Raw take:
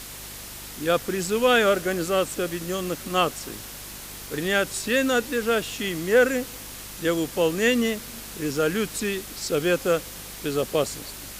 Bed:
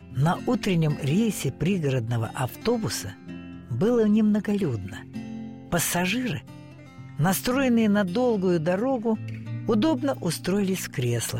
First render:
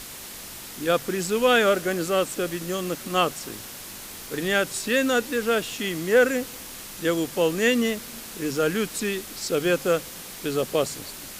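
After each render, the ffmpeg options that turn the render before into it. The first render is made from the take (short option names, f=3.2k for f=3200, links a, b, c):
-af "bandreject=f=50:t=h:w=4,bandreject=f=100:t=h:w=4,bandreject=f=150:t=h:w=4"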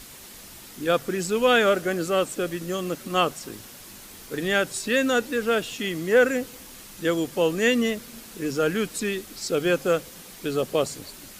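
-af "afftdn=nr=6:nf=-39"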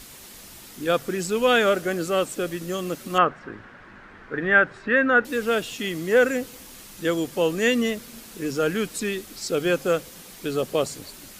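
-filter_complex "[0:a]asettb=1/sr,asplit=3[a][b][c];[a]atrim=end=3.184[d];[b]atrim=start=3.18:end=5.25,asetpts=PTS-STARTPTS,afade=t=in:d=0.004:c=qsin,afade=t=out:st=2.066:d=0.004:c=qsin,lowpass=f=1.6k:t=q:w=2.9[e];[c]atrim=start=5.246[f];[d][e]acrossfade=d=0.004:c1=hsin:c2=qsin[g];[g][f]acrossfade=d=0.004:c1=qsin:c2=hsin"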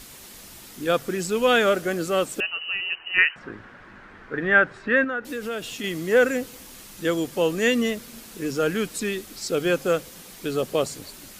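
-filter_complex "[0:a]asettb=1/sr,asplit=3[a][b][c];[a]atrim=end=2.404[d];[b]atrim=start=2.4:end=3.36,asetpts=PTS-STARTPTS,afade=t=in:d=0.004:c=qsin,afade=t=out:st=0.956:d=0.004:c=qsin,lowpass=f=2.6k:t=q:w=0.5098,lowpass=f=2.6k:t=q:w=0.6013,lowpass=f=2.6k:t=q:w=0.9,lowpass=f=2.6k:t=q:w=2.563,afreqshift=-3100[e];[c]atrim=start=3.356[f];[d][e]acrossfade=d=0.004:c1=hsin:c2=qsin[g];[g][f]acrossfade=d=0.004:c1=qsin:c2=hsin,asettb=1/sr,asplit=3[h][i][j];[h]atrim=end=5.044[k];[i]atrim=start=5.04:end=5.84,asetpts=PTS-STARTPTS,afade=t=in:d=0.004:c=qsin,afade=t=out:st=0.796:d=0.004:c=qsin,acompressor=threshold=-28dB:ratio=3:attack=3.2:release=140:knee=1:detection=peak[l];[j]atrim=start=5.836[m];[k][l]acrossfade=d=0.004:c1=hsin:c2=qsin[n];[n][m]acrossfade=d=0.004:c1=qsin:c2=hsin"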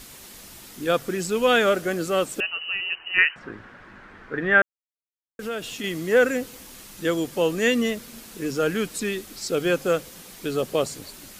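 -filter_complex "[0:a]asplit=3[a][b][c];[a]atrim=end=4.62,asetpts=PTS-STARTPTS,afade=t=out:st=4.616:d=0.004:c=hsin[d];[b]atrim=start=4.62:end=5.39,asetpts=PTS-STARTPTS,volume=0[e];[c]atrim=start=5.39,asetpts=PTS-STARTPTS,afade=t=in:d=0.004:c=hsin[f];[d][e][f]concat=n=3:v=0:a=1"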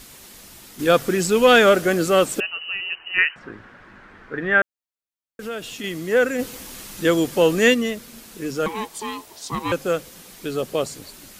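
-filter_complex "[0:a]asettb=1/sr,asplit=3[a][b][c];[a]atrim=end=0.794[d];[b]atrim=start=0.79:end=2.4,asetpts=PTS-STARTPTS,afade=t=in:d=0.004:c=qsin,afade=t=out:st=1.606:d=0.004:c=qsin,acontrast=66[e];[c]atrim=start=2.396[f];[d][e]acrossfade=d=0.004:c1=hsin:c2=qsin[g];[g][f]acrossfade=d=0.004:c1=qsin:c2=hsin,asplit=3[h][i][j];[h]afade=t=out:st=6.38:d=0.02[k];[i]acontrast=51,afade=t=in:st=6.38:d=0.02,afade=t=out:st=7.73:d=0.02[l];[j]afade=t=in:st=7.73:d=0.02[m];[k][l][m]amix=inputs=3:normalize=0,asettb=1/sr,asplit=3[n][o][p];[n]atrim=end=8.664[q];[o]atrim=start=8.66:end=9.72,asetpts=PTS-STARTPTS,afade=t=in:d=0.004:c=qsin,afade=t=out:st=1.056:d=0.004:c=qsin,aeval=exprs='val(0)*sin(2*PI*650*n/s)':c=same[r];[p]atrim=start=9.716[s];[q][r]acrossfade=d=0.004:c1=hsin:c2=qsin[t];[t][s]acrossfade=d=0.004:c1=qsin:c2=hsin"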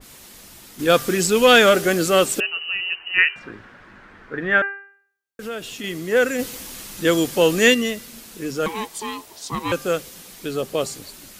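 -af "bandreject=f=396.8:t=h:w=4,bandreject=f=793.6:t=h:w=4,bandreject=f=1.1904k:t=h:w=4,bandreject=f=1.5872k:t=h:w=4,bandreject=f=1.984k:t=h:w=4,bandreject=f=2.3808k:t=h:w=4,bandreject=f=2.7776k:t=h:w=4,adynamicequalizer=threshold=0.0355:dfrequency=2200:dqfactor=0.7:tfrequency=2200:tqfactor=0.7:attack=5:release=100:ratio=0.375:range=2.5:mode=boostabove:tftype=highshelf"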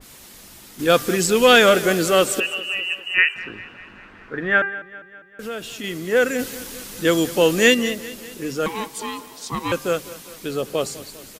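-af "aecho=1:1:200|400|600|800|1000:0.133|0.0773|0.0449|0.026|0.0151"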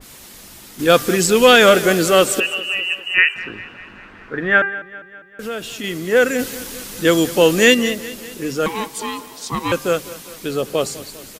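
-af "volume=3.5dB,alimiter=limit=-1dB:level=0:latency=1"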